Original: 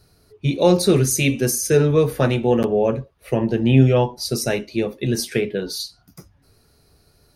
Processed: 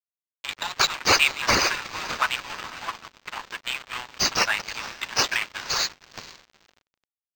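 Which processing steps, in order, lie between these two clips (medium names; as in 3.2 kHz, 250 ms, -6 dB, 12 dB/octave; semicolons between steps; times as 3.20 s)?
chunks repeated in reverse 110 ms, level -14 dB; in parallel at -9 dB: fuzz box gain 36 dB, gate -38 dBFS; on the sum: elliptic high-pass 900 Hz, stop band 60 dB; harmonic-percussive split harmonic -18 dB; echo that smears into a reverb 485 ms, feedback 60%, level -12 dB; crossover distortion -35.5 dBFS; decimation joined by straight lines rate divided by 4×; trim +5.5 dB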